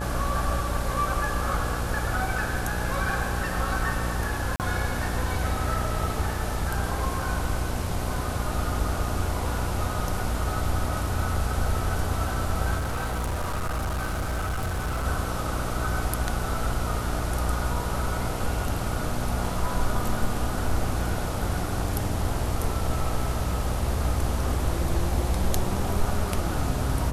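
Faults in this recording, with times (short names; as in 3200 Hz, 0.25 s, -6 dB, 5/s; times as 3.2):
buzz 60 Hz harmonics 22 -31 dBFS
4.56–4.6 gap 38 ms
12.78–15.06 clipped -24.5 dBFS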